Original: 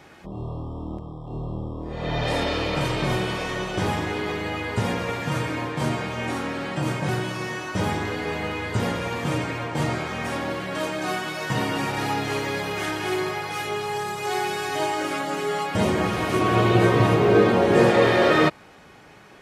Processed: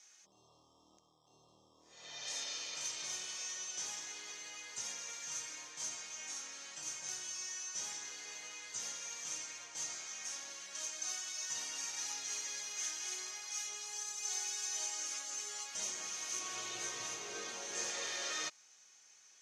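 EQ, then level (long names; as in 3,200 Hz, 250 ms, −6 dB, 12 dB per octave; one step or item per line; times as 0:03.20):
resonant band-pass 6,300 Hz, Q 8.9
+9.5 dB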